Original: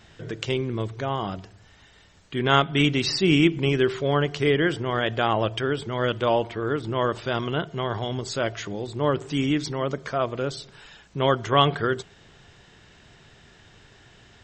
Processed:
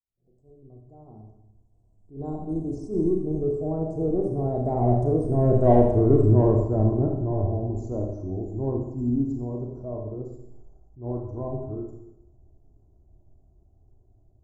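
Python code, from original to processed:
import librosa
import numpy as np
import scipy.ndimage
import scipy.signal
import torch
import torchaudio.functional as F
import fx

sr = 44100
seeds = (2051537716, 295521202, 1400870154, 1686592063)

p1 = fx.fade_in_head(x, sr, length_s=3.05)
p2 = fx.doppler_pass(p1, sr, speed_mps=35, closest_m=21.0, pass_at_s=5.91)
p3 = scipy.signal.sosfilt(scipy.signal.cheby1(3, 1.0, [760.0, 7300.0], 'bandstop', fs=sr, output='sos'), p2)
p4 = p3 + 0.46 * np.pad(p3, (int(2.9 * sr / 1000.0), 0))[:len(p3)]
p5 = 10.0 ** (-25.5 / 20.0) * np.tanh(p4 / 10.0 ** (-25.5 / 20.0))
p6 = p4 + (p5 * librosa.db_to_amplitude(-8.5))
p7 = fx.riaa(p6, sr, side='playback')
p8 = fx.rev_schroeder(p7, sr, rt60_s=0.86, comb_ms=29, drr_db=1.0)
y = fx.attack_slew(p8, sr, db_per_s=180.0)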